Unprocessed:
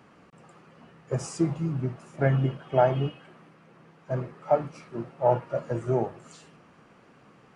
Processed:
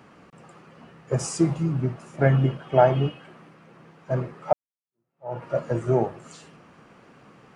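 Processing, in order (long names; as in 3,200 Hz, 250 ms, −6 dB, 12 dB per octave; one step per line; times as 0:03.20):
0:01.19–0:01.63: high-shelf EQ 5,100 Hz +5.5 dB
0:04.53–0:05.44: fade in exponential
level +4 dB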